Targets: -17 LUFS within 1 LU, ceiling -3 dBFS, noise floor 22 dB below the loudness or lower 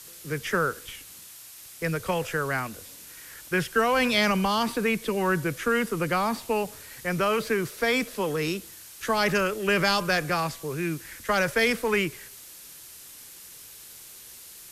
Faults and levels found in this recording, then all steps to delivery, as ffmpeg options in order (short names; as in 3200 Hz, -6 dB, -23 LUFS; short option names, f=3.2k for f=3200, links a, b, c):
noise floor -46 dBFS; noise floor target -48 dBFS; loudness -26.0 LUFS; peak -9.0 dBFS; loudness target -17.0 LUFS
-> -af "afftdn=nr=6:nf=-46"
-af "volume=9dB,alimiter=limit=-3dB:level=0:latency=1"